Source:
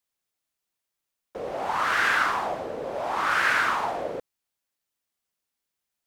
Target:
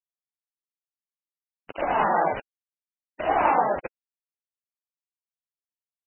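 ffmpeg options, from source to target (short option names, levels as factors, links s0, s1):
-af "agate=range=0.0316:threshold=0.0631:ratio=16:detection=peak,asetrate=24046,aresample=44100,atempo=1.83401,flanger=delay=2.5:depth=5.2:regen=9:speed=0.6:shape=triangular,aresample=8000,acrusher=bits=5:mix=0:aa=0.000001,aresample=44100,acontrast=54" -ar 16000 -c:a libmp3lame -b:a 8k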